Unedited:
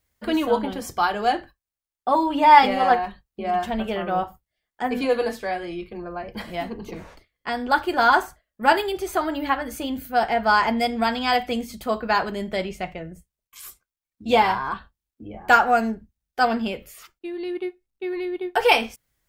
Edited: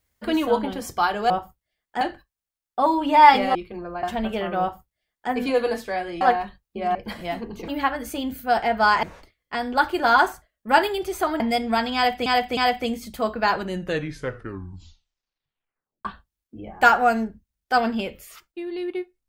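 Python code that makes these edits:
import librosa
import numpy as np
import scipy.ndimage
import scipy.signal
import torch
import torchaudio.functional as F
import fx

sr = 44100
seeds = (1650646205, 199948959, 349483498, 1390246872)

y = fx.edit(x, sr, fx.swap(start_s=2.84, length_s=0.74, other_s=5.76, other_length_s=0.48),
    fx.duplicate(start_s=4.15, length_s=0.71, to_s=1.3),
    fx.move(start_s=9.34, length_s=1.35, to_s=6.97),
    fx.repeat(start_s=11.24, length_s=0.31, count=3),
    fx.tape_stop(start_s=12.2, length_s=2.52), tone=tone)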